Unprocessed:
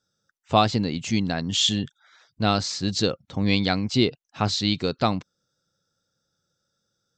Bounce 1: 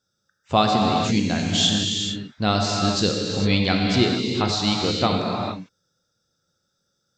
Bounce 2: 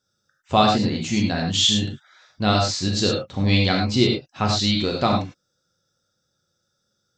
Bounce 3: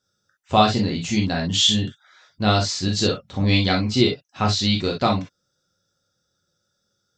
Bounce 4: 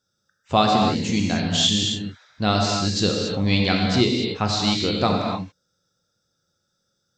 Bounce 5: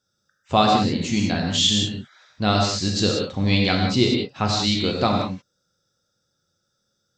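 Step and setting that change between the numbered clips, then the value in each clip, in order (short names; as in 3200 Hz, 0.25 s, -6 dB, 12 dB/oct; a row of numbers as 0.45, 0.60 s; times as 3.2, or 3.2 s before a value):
non-linear reverb, gate: 480, 130, 80, 310, 210 ms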